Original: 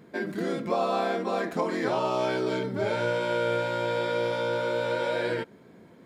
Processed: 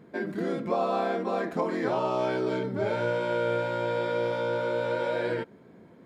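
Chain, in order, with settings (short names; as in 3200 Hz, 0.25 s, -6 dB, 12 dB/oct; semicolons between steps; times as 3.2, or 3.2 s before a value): high shelf 2600 Hz -8 dB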